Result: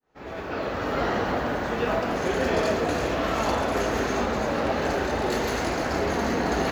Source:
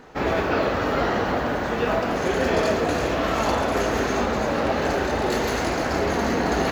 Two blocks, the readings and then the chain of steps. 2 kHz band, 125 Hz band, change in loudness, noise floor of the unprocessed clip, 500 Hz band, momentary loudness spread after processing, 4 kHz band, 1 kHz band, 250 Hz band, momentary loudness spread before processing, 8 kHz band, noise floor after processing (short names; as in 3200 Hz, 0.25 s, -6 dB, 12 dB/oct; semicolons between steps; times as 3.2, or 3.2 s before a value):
-3.0 dB, -3.0 dB, -3.0 dB, -26 dBFS, -3.0 dB, 3 LU, -3.0 dB, -3.0 dB, -3.0 dB, 2 LU, -2.5 dB, -35 dBFS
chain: opening faded in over 1.09 s; gain -2.5 dB